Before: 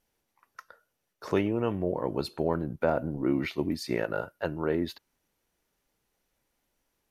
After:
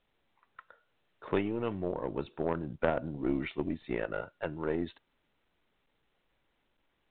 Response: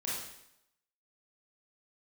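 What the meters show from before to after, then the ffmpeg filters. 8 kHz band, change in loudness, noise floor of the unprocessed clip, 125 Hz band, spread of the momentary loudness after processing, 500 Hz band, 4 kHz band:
below −25 dB, −4.5 dB, −80 dBFS, −5.5 dB, 6 LU, −4.0 dB, −8.5 dB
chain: -af "aeval=exprs='0.282*(cos(1*acos(clip(val(0)/0.282,-1,1)))-cos(1*PI/2))+0.0447*(cos(2*acos(clip(val(0)/0.282,-1,1)))-cos(2*PI/2))+0.0355*(cos(3*acos(clip(val(0)/0.282,-1,1)))-cos(3*PI/2))+0.0355*(cos(4*acos(clip(val(0)/0.282,-1,1)))-cos(4*PI/2))+0.002*(cos(5*acos(clip(val(0)/0.282,-1,1)))-cos(5*PI/2))':channel_layout=same,volume=-1dB" -ar 8000 -c:a pcm_mulaw

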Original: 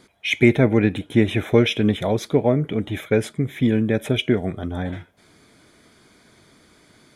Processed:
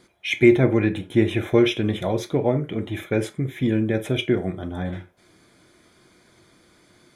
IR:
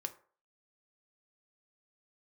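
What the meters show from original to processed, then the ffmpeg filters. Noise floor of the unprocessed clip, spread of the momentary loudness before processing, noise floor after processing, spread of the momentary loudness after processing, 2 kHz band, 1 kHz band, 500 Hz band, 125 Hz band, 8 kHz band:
−55 dBFS, 11 LU, −58 dBFS, 13 LU, −2.5 dB, −2.0 dB, −1.0 dB, −2.5 dB, −2.5 dB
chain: -filter_complex "[1:a]atrim=start_sample=2205,afade=type=out:start_time=0.15:duration=0.01,atrim=end_sample=7056[link_01];[0:a][link_01]afir=irnorm=-1:irlink=0,volume=-1dB"

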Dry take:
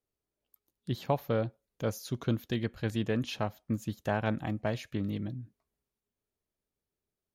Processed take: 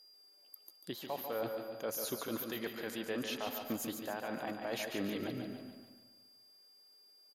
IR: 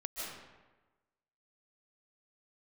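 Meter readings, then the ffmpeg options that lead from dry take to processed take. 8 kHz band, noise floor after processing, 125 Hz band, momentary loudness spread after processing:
+4.5 dB, −64 dBFS, −18.0 dB, 17 LU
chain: -filter_complex "[0:a]highpass=450,equalizer=frequency=12000:width=1.3:gain=11,areverse,acompressor=threshold=-45dB:ratio=16,areverse,alimiter=level_in=18dB:limit=-24dB:level=0:latency=1:release=92,volume=-18dB,aeval=exprs='val(0)+0.000316*sin(2*PI*4800*n/s)':channel_layout=same,aecho=1:1:143|286|429|572|715|858:0.447|0.21|0.0987|0.0464|0.0218|0.0102,asplit=2[link_01][link_02];[1:a]atrim=start_sample=2205,lowpass=2700[link_03];[link_02][link_03]afir=irnorm=-1:irlink=0,volume=-6.5dB[link_04];[link_01][link_04]amix=inputs=2:normalize=0,volume=12dB"

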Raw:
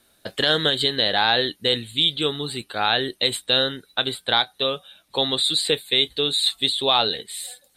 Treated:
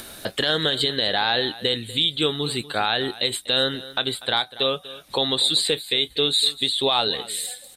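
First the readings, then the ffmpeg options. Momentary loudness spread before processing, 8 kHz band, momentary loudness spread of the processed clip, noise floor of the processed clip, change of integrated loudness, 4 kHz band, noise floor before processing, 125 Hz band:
9 LU, +2.0 dB, 7 LU, −47 dBFS, −1.0 dB, −1.0 dB, −62 dBFS, +0.5 dB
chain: -af "alimiter=limit=-13dB:level=0:latency=1:release=215,acompressor=mode=upward:threshold=-29dB:ratio=2.5,aecho=1:1:243:0.133,volume=3.5dB"

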